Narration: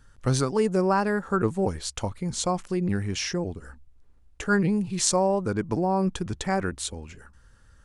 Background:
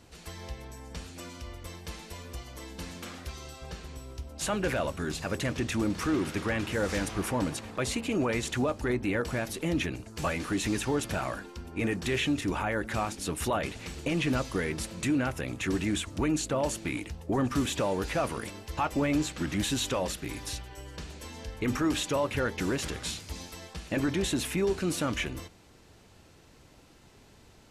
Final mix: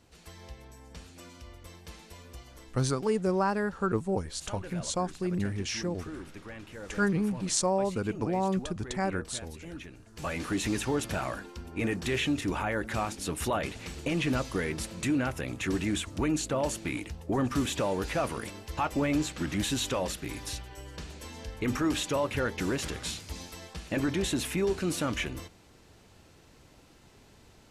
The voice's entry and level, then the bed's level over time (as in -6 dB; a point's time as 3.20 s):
2.50 s, -4.5 dB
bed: 2.50 s -6 dB
2.86 s -14 dB
9.94 s -14 dB
10.40 s -0.5 dB